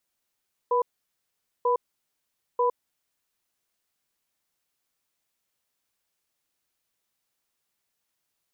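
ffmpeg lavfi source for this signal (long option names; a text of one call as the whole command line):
ffmpeg -f lavfi -i "aevalsrc='0.075*(sin(2*PI*484*t)+sin(2*PI*994*t))*clip(min(mod(t,0.94),0.11-mod(t,0.94))/0.005,0,1)':duration=2.73:sample_rate=44100" out.wav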